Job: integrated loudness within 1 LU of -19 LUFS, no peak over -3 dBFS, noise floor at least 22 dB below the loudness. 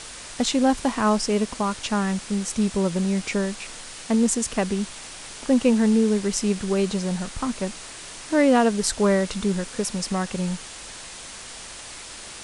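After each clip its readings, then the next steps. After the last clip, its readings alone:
noise floor -39 dBFS; noise floor target -46 dBFS; loudness -23.5 LUFS; peak -5.5 dBFS; loudness target -19.0 LUFS
-> denoiser 7 dB, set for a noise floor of -39 dBFS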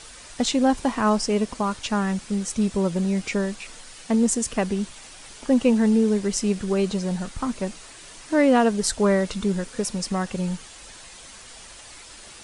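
noise floor -44 dBFS; noise floor target -46 dBFS
-> denoiser 6 dB, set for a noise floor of -44 dBFS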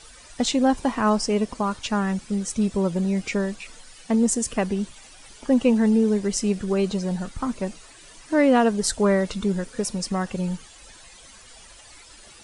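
noise floor -48 dBFS; loudness -23.5 LUFS; peak -5.5 dBFS; loudness target -19.0 LUFS
-> gain +4.5 dB; limiter -3 dBFS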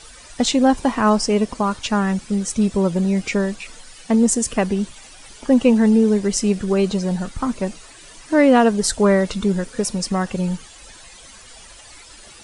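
loudness -19.0 LUFS; peak -3.0 dBFS; noise floor -43 dBFS

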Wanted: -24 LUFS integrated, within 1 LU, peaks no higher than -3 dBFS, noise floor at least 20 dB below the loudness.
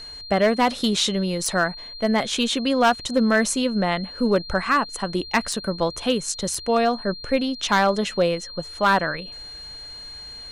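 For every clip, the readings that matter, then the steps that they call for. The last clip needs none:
clipped 0.4%; flat tops at -11.0 dBFS; steady tone 4200 Hz; tone level -36 dBFS; loudness -22.0 LUFS; peak -11.0 dBFS; loudness target -24.0 LUFS
-> clip repair -11 dBFS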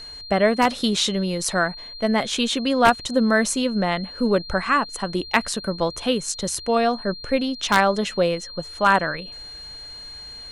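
clipped 0.0%; steady tone 4200 Hz; tone level -36 dBFS
-> notch 4200 Hz, Q 30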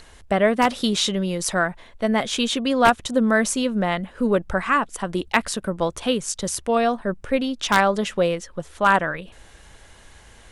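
steady tone none; loudness -22.0 LUFS; peak -2.0 dBFS; loudness target -24.0 LUFS
-> gain -2 dB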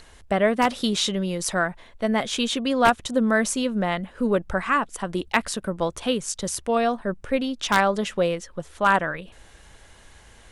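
loudness -24.0 LUFS; peak -4.0 dBFS; noise floor -51 dBFS

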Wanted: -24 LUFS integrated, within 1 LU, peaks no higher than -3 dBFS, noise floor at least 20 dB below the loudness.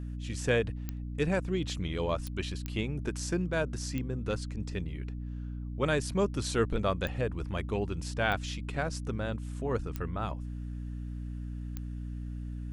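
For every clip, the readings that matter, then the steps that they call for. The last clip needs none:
clicks 8; hum 60 Hz; harmonics up to 300 Hz; hum level -35 dBFS; loudness -34.0 LUFS; peak -13.0 dBFS; loudness target -24.0 LUFS
-> de-click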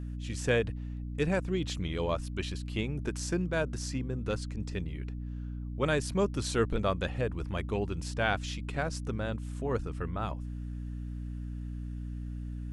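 clicks 0; hum 60 Hz; harmonics up to 300 Hz; hum level -35 dBFS
-> de-hum 60 Hz, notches 5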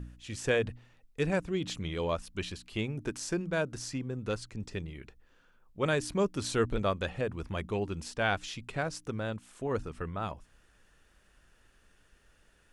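hum none; loudness -34.0 LUFS; peak -13.5 dBFS; loudness target -24.0 LUFS
-> gain +10 dB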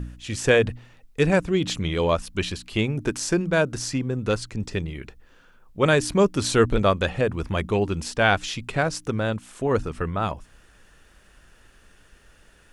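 loudness -24.0 LUFS; peak -3.5 dBFS; noise floor -55 dBFS

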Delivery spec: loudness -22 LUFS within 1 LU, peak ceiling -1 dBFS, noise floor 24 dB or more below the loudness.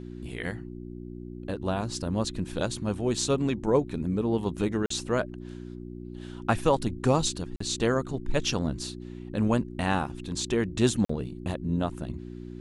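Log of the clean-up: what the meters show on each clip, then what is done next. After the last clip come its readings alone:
dropouts 3; longest dropout 44 ms; hum 60 Hz; harmonics up to 360 Hz; hum level -37 dBFS; loudness -29.0 LUFS; peak -8.5 dBFS; loudness target -22.0 LUFS
-> interpolate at 4.86/7.56/11.05, 44 ms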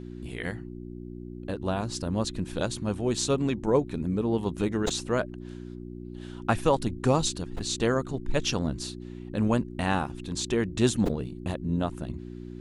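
dropouts 0; hum 60 Hz; harmonics up to 360 Hz; hum level -37 dBFS
-> de-hum 60 Hz, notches 6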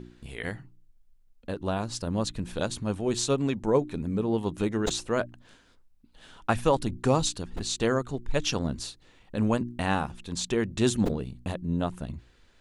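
hum none; loudness -29.0 LUFS; peak -8.5 dBFS; loudness target -22.0 LUFS
-> gain +7 dB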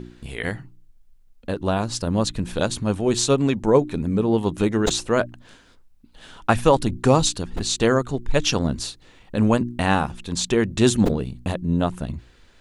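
loudness -22.0 LUFS; peak -1.5 dBFS; noise floor -53 dBFS

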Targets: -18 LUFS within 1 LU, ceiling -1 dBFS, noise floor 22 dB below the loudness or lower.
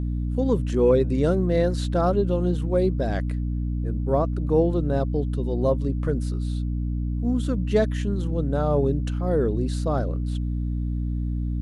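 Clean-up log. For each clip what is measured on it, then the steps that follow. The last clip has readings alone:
hum 60 Hz; harmonics up to 300 Hz; hum level -23 dBFS; loudness -24.5 LUFS; peak -9.0 dBFS; loudness target -18.0 LUFS
-> notches 60/120/180/240/300 Hz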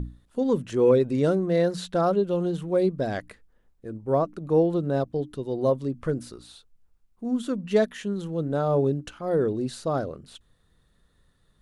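hum none; loudness -25.5 LUFS; peak -9.0 dBFS; loudness target -18.0 LUFS
-> gain +7.5 dB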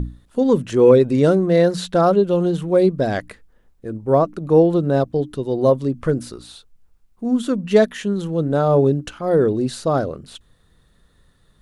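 loudness -18.0 LUFS; peak -1.5 dBFS; noise floor -58 dBFS

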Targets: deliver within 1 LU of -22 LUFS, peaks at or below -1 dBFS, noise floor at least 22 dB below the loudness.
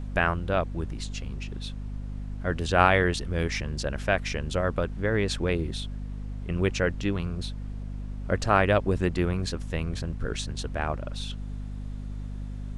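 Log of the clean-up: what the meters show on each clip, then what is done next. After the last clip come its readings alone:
hum 50 Hz; harmonics up to 250 Hz; hum level -32 dBFS; noise floor -36 dBFS; noise floor target -51 dBFS; loudness -28.5 LUFS; peak -5.0 dBFS; loudness target -22.0 LUFS
-> notches 50/100/150/200/250 Hz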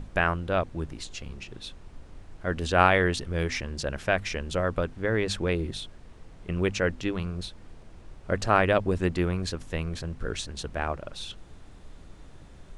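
hum none; noise floor -49 dBFS; noise floor target -50 dBFS
-> noise print and reduce 6 dB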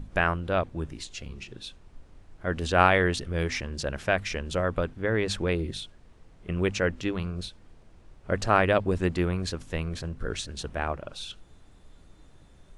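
noise floor -54 dBFS; loudness -28.0 LUFS; peak -5.5 dBFS; loudness target -22.0 LUFS
-> gain +6 dB; limiter -1 dBFS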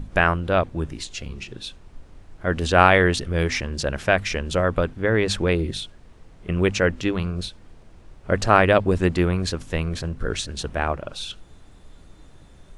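loudness -22.0 LUFS; peak -1.0 dBFS; noise floor -48 dBFS

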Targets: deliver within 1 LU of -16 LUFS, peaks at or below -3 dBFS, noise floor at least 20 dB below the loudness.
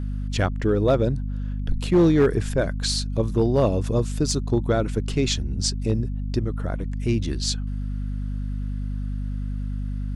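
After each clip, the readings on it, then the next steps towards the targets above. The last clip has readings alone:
clipped 0.4%; flat tops at -11.5 dBFS; hum 50 Hz; harmonics up to 250 Hz; hum level -25 dBFS; loudness -24.5 LUFS; peak -11.5 dBFS; loudness target -16.0 LUFS
-> clip repair -11.5 dBFS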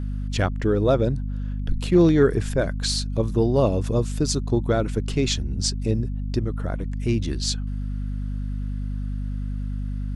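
clipped 0.0%; hum 50 Hz; harmonics up to 250 Hz; hum level -25 dBFS
-> de-hum 50 Hz, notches 5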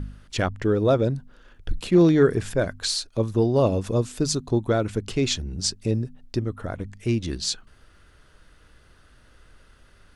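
hum none; loudness -24.0 LUFS; peak -7.0 dBFS; loudness target -16.0 LUFS
-> gain +8 dB; limiter -3 dBFS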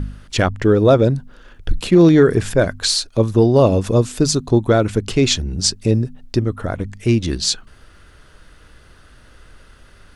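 loudness -16.5 LUFS; peak -3.0 dBFS; noise floor -47 dBFS

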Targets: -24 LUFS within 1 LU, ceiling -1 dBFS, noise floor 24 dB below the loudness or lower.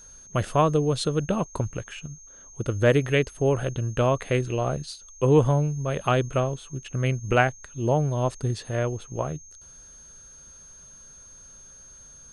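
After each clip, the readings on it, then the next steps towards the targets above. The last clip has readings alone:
steady tone 6400 Hz; tone level -46 dBFS; loudness -25.0 LUFS; peak -4.0 dBFS; loudness target -24.0 LUFS
-> notch 6400 Hz, Q 30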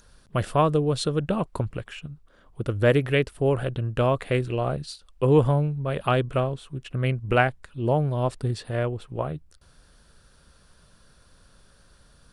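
steady tone none; loudness -25.0 LUFS; peak -4.0 dBFS; loudness target -24.0 LUFS
-> gain +1 dB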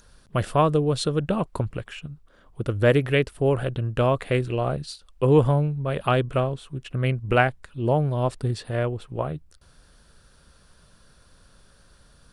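loudness -24.0 LUFS; peak -3.0 dBFS; noise floor -57 dBFS

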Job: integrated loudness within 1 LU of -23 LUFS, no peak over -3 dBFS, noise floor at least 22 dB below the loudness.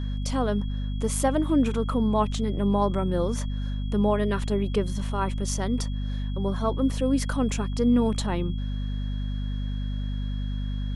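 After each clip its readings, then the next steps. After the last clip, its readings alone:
hum 50 Hz; harmonics up to 250 Hz; hum level -26 dBFS; steady tone 3300 Hz; tone level -48 dBFS; loudness -27.0 LUFS; peak -10.0 dBFS; loudness target -23.0 LUFS
-> de-hum 50 Hz, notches 5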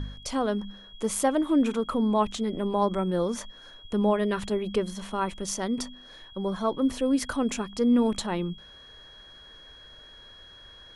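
hum none; steady tone 3300 Hz; tone level -48 dBFS
-> notch 3300 Hz, Q 30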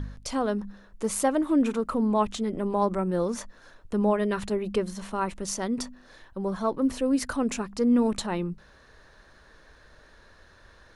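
steady tone none; loudness -27.5 LUFS; peak -11.5 dBFS; loudness target -23.0 LUFS
-> gain +4.5 dB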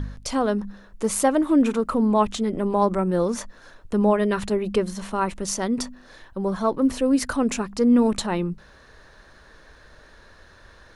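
loudness -23.0 LUFS; peak -7.0 dBFS; noise floor -51 dBFS

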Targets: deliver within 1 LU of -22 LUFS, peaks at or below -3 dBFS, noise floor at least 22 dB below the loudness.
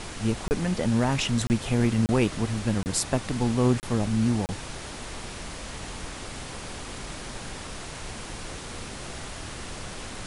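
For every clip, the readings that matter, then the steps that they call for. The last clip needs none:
dropouts 6; longest dropout 29 ms; noise floor -39 dBFS; noise floor target -51 dBFS; loudness -28.5 LUFS; peak -9.0 dBFS; loudness target -22.0 LUFS
-> interpolate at 0.48/1.47/2.06/2.83/3.8/4.46, 29 ms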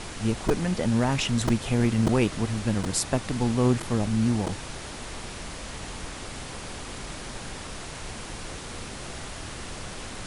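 dropouts 0; noise floor -38 dBFS; noise floor target -51 dBFS
-> noise print and reduce 13 dB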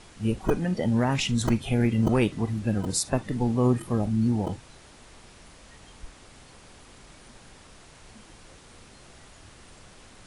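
noise floor -51 dBFS; loudness -25.5 LUFS; peak -9.0 dBFS; loudness target -22.0 LUFS
-> gain +3.5 dB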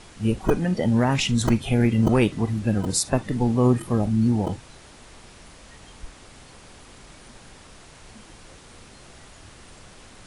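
loudness -22.0 LUFS; peak -5.5 dBFS; noise floor -48 dBFS

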